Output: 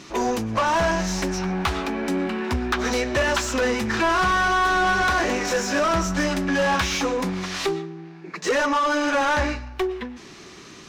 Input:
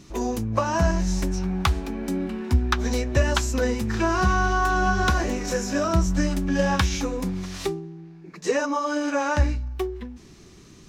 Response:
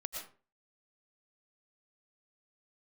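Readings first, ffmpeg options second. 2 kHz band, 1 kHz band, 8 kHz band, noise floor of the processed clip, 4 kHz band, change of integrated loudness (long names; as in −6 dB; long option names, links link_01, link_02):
+5.5 dB, +4.0 dB, +2.5 dB, −43 dBFS, +5.0 dB, +2.0 dB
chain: -filter_complex "[0:a]asplit=2[link_01][link_02];[link_02]highpass=780,lowpass=6900[link_03];[1:a]atrim=start_sample=2205[link_04];[link_03][link_04]afir=irnorm=-1:irlink=0,volume=-13dB[link_05];[link_01][link_05]amix=inputs=2:normalize=0,asplit=2[link_06][link_07];[link_07]highpass=frequency=720:poles=1,volume=25dB,asoftclip=type=tanh:threshold=-6.5dB[link_08];[link_06][link_08]amix=inputs=2:normalize=0,lowpass=frequency=3000:poles=1,volume=-6dB,volume=-6dB"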